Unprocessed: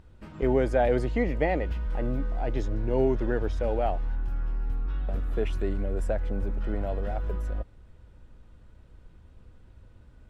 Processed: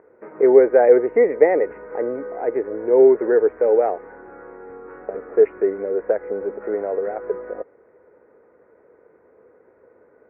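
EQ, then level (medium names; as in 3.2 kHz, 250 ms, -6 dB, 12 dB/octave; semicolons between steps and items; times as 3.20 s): steep low-pass 2.2 kHz 72 dB/octave; dynamic bell 630 Hz, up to -4 dB, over -41 dBFS, Q 1.6; resonant high-pass 440 Hz, resonance Q 4.9; +5.5 dB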